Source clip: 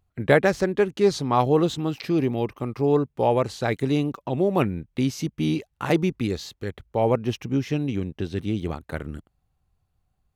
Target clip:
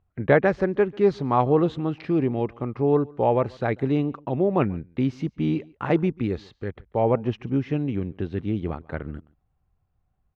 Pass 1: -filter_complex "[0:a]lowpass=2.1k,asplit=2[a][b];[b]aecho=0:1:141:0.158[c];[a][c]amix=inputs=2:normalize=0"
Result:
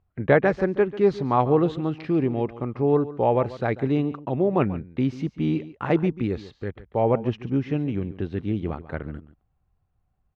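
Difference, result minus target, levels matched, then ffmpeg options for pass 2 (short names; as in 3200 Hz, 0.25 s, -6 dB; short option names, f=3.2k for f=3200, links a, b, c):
echo-to-direct +9 dB
-filter_complex "[0:a]lowpass=2.1k,asplit=2[a][b];[b]aecho=0:1:141:0.0562[c];[a][c]amix=inputs=2:normalize=0"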